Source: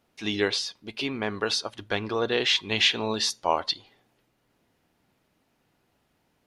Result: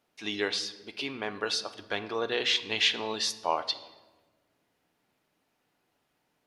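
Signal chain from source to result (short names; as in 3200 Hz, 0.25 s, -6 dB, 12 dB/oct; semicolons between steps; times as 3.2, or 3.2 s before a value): low shelf 200 Hz -10.5 dB; shoebox room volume 870 m³, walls mixed, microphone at 0.4 m; gain -3.5 dB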